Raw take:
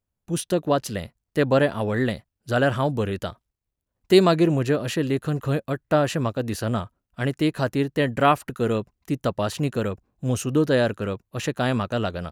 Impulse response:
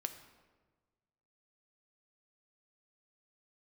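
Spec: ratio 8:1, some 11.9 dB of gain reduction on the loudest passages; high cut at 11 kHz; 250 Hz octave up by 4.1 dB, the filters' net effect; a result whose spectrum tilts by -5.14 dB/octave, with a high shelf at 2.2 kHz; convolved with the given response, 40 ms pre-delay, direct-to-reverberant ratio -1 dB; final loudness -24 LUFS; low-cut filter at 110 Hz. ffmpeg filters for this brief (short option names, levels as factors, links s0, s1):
-filter_complex "[0:a]highpass=110,lowpass=11000,equalizer=f=250:t=o:g=5.5,highshelf=f=2200:g=7,acompressor=threshold=0.1:ratio=8,asplit=2[s0][s1];[1:a]atrim=start_sample=2205,adelay=40[s2];[s1][s2]afir=irnorm=-1:irlink=0,volume=1.26[s3];[s0][s3]amix=inputs=2:normalize=0,volume=0.944"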